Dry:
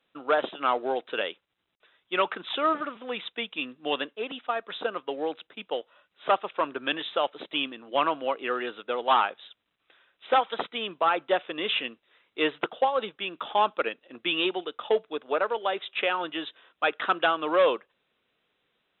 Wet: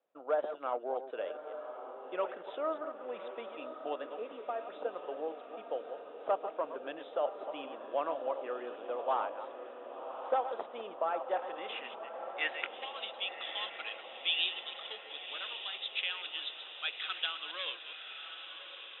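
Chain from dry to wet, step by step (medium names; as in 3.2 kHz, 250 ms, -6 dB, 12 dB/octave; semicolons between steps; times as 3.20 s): chunks repeated in reverse 139 ms, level -10 dB; dynamic bell 660 Hz, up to -5 dB, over -37 dBFS, Q 0.78; band-pass sweep 610 Hz -> 3.6 kHz, 11.05–13.20 s; on a send: echo that smears into a reverb 1122 ms, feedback 60%, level -9 dB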